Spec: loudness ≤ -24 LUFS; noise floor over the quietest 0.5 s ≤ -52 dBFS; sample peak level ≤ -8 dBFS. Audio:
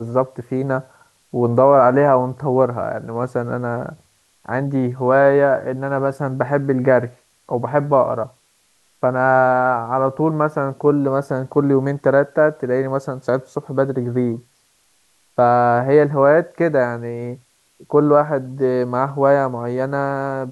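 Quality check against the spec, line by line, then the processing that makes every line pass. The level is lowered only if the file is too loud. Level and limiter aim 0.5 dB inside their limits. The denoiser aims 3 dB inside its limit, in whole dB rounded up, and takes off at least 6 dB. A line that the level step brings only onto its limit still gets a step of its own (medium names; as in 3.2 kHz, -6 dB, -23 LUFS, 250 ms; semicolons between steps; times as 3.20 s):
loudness -18.0 LUFS: fail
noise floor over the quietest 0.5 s -60 dBFS: pass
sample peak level -2.0 dBFS: fail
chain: trim -6.5 dB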